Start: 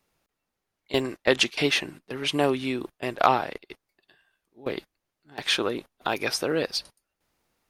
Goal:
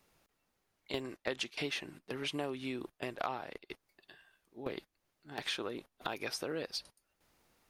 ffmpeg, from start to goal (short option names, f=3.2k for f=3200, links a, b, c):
-af "acompressor=threshold=-43dB:ratio=3,volume=2.5dB"